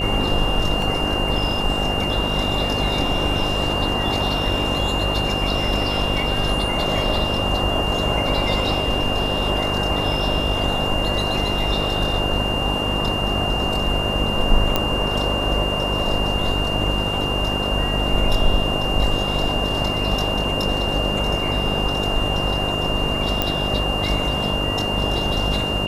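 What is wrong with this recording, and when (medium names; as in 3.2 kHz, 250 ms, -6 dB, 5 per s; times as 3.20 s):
buzz 50 Hz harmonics 14 -26 dBFS
whine 2.8 kHz -24 dBFS
0.82 s: dropout 2 ms
14.76 s: pop -4 dBFS
20.44 s: dropout 3.4 ms
23.42 s: pop -5 dBFS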